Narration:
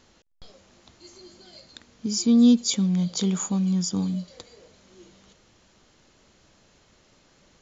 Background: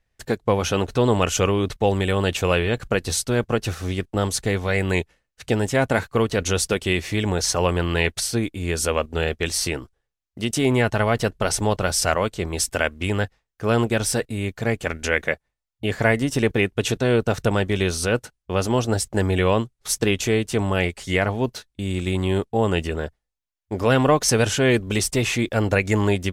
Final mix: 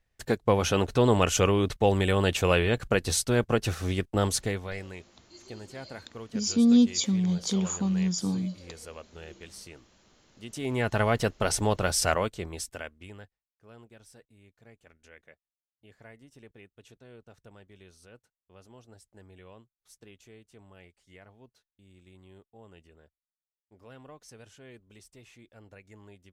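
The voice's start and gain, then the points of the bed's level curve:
4.30 s, -3.0 dB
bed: 4.35 s -3 dB
4.97 s -22 dB
10.30 s -22 dB
10.96 s -4.5 dB
12.15 s -4.5 dB
13.61 s -32 dB

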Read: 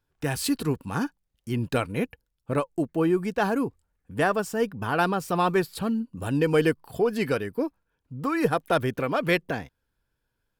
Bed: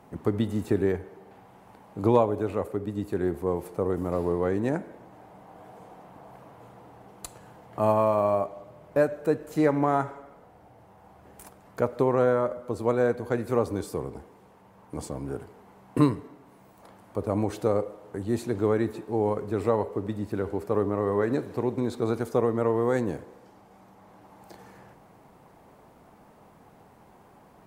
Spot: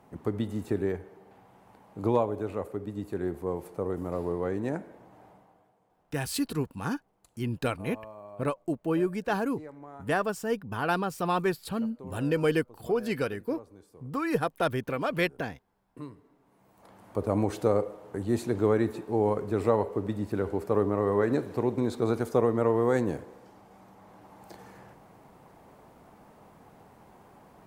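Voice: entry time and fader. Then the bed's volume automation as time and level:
5.90 s, -4.0 dB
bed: 5.29 s -4.5 dB
5.78 s -22.5 dB
15.96 s -22.5 dB
17.06 s 0 dB

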